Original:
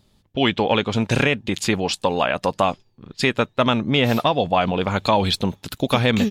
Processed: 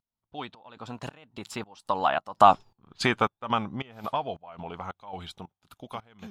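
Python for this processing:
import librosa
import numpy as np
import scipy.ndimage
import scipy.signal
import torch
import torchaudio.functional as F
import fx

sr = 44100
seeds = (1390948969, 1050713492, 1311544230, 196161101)

y = fx.doppler_pass(x, sr, speed_mps=25, closest_m=5.5, pass_at_s=2.72)
y = fx.volume_shaper(y, sr, bpm=110, per_beat=1, depth_db=-21, release_ms=220.0, shape='slow start')
y = fx.band_shelf(y, sr, hz=1000.0, db=9.0, octaves=1.3)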